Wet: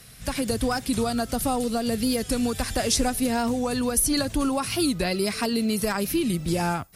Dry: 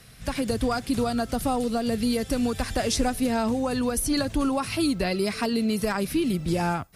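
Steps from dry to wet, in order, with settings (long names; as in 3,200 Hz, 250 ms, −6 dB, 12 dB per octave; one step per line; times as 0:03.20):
high-shelf EQ 5,600 Hz +8 dB
wow of a warped record 45 rpm, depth 100 cents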